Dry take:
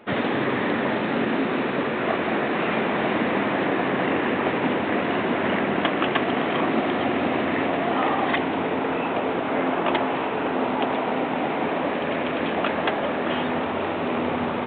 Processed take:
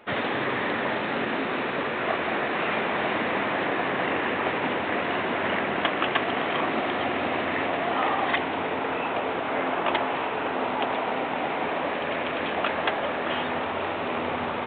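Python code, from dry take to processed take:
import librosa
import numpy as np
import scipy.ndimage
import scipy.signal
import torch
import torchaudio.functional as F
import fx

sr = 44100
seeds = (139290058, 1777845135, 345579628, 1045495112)

y = fx.peak_eq(x, sr, hz=220.0, db=-8.0, octaves=2.2)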